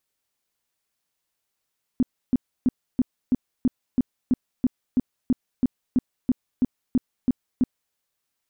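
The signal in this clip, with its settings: tone bursts 252 Hz, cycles 7, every 0.33 s, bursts 18, -15 dBFS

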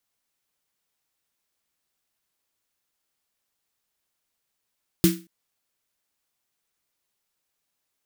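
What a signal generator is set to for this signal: snare drum length 0.23 s, tones 180 Hz, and 330 Hz, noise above 1400 Hz, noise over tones -7.5 dB, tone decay 0.30 s, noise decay 0.29 s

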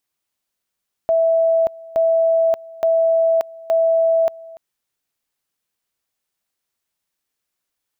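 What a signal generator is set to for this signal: two-level tone 657 Hz -12.5 dBFS, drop 22 dB, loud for 0.58 s, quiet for 0.29 s, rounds 4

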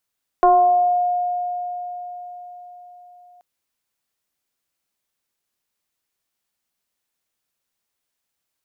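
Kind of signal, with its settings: FM tone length 2.98 s, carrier 714 Hz, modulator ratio 0.49, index 0.94, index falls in 0.97 s exponential, decay 4.71 s, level -9 dB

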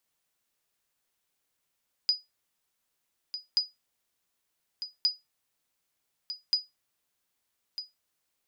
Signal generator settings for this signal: sonar ping 4940 Hz, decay 0.19 s, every 1.48 s, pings 4, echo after 1.25 s, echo -11.5 dB -16.5 dBFS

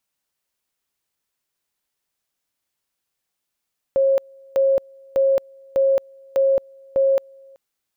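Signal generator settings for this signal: two-level tone 542 Hz -13.5 dBFS, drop 29.5 dB, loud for 0.22 s, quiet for 0.38 s, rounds 6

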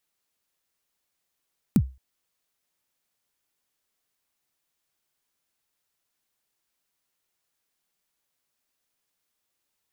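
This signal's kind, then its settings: kick drum length 0.22 s, from 260 Hz, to 65 Hz, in 62 ms, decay 0.29 s, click on, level -11 dB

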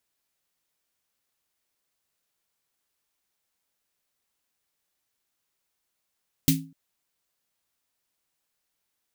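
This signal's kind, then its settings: snare drum length 0.25 s, tones 160 Hz, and 270 Hz, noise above 2300 Hz, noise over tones -2.5 dB, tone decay 0.38 s, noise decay 0.20 s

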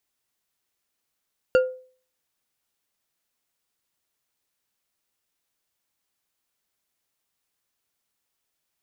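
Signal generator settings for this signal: glass hit bar, lowest mode 512 Hz, decay 0.44 s, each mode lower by 8 dB, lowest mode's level -11.5 dB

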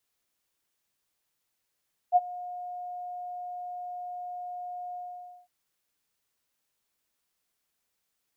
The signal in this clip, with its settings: ADSR sine 717 Hz, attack 41 ms, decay 34 ms, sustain -20.5 dB, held 2.83 s, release 0.525 s -14.5 dBFS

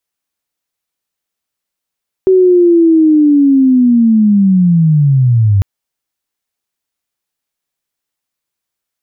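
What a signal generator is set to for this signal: chirp linear 380 Hz -> 95 Hz -4 dBFS -> -6 dBFS 3.35 s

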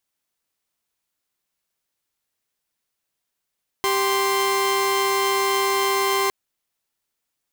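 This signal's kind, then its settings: chord G4/C6 saw, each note -19 dBFS 2.46 s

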